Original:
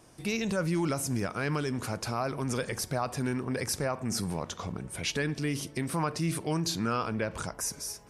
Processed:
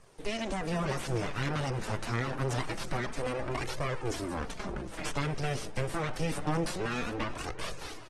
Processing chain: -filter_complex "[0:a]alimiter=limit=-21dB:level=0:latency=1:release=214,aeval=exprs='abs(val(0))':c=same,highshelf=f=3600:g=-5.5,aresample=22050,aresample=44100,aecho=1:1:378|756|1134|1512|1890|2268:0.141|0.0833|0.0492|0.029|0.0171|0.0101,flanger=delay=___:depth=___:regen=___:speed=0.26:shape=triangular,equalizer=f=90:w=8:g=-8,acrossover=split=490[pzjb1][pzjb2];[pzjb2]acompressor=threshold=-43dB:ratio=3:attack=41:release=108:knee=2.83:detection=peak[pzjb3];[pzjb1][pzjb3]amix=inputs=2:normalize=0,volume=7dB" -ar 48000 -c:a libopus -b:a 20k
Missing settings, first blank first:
1.6, 7.9, -14